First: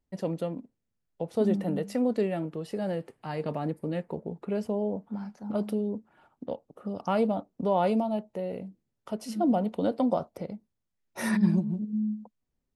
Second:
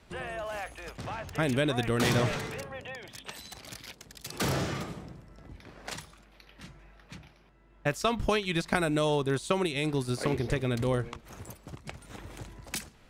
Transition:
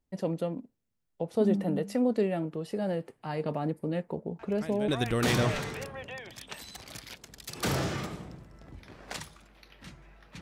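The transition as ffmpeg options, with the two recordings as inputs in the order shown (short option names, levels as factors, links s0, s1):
-filter_complex "[1:a]asplit=2[s0][s1];[0:a]apad=whole_dur=10.41,atrim=end=10.41,atrim=end=4.882[s2];[s1]atrim=start=1.648:end=7.18[s3];[s0]atrim=start=1.16:end=1.65,asetpts=PTS-STARTPTS,volume=0.2,afade=t=in:d=0.004:c=hsin,afade=t=out:st=0.486:d=0.004:c=hsin,adelay=4390[s4];[s2][s3]acrossfade=d=0.004:c1=hsin:c2=hsin[s5];[s5][s4]amix=inputs=2:normalize=0"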